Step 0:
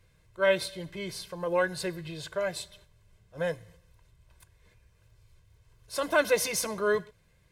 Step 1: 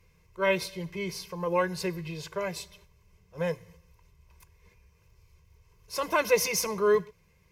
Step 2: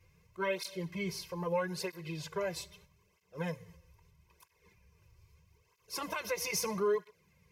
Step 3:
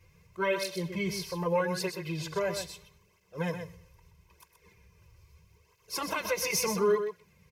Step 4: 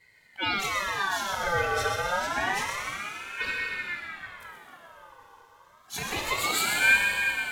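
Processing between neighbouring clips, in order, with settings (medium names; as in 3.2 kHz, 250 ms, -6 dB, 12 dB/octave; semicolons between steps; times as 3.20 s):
rippled EQ curve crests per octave 0.8, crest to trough 9 dB
compression 4:1, threshold -27 dBFS, peak gain reduction 9 dB; cancelling through-zero flanger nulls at 0.78 Hz, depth 5 ms
delay 126 ms -8 dB; trim +4.5 dB
plate-style reverb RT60 4.4 s, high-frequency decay 0.7×, DRR -2.5 dB; ring modulator with a swept carrier 1.5 kHz, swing 35%, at 0.28 Hz; trim +2 dB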